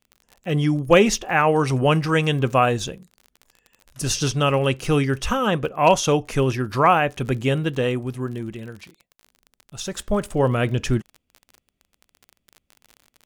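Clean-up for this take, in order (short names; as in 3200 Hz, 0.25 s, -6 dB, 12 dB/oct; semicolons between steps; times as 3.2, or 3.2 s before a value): clip repair -4 dBFS; de-click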